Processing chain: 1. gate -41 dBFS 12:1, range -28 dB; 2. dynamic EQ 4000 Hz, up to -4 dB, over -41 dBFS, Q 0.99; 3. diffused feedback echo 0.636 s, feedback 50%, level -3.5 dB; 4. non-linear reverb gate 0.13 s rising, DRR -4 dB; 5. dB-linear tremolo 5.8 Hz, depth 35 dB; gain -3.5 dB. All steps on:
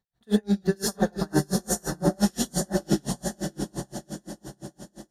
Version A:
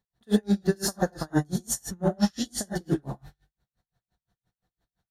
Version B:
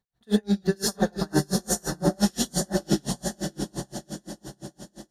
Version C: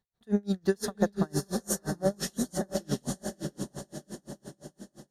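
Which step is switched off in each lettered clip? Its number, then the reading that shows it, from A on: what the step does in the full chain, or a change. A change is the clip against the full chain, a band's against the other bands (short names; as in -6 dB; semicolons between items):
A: 3, momentary loudness spread change -10 LU; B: 2, 4 kHz band +3.0 dB; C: 4, crest factor change +2.5 dB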